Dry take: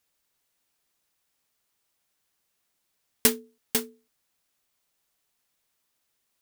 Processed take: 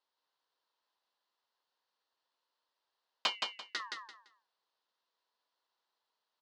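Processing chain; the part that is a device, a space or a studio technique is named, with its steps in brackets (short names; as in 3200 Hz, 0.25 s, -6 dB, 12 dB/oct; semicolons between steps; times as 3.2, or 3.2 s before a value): voice changer toy (ring modulator with a swept carrier 1600 Hz, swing 75%, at 0.33 Hz; speaker cabinet 420–4500 Hz, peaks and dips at 500 Hz +3 dB, 980 Hz +9 dB, 2300 Hz -10 dB, 4300 Hz +4 dB); 3.35–3.8 band shelf 810 Hz -11.5 dB; feedback echo 0.17 s, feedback 25%, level -4 dB; gain -3 dB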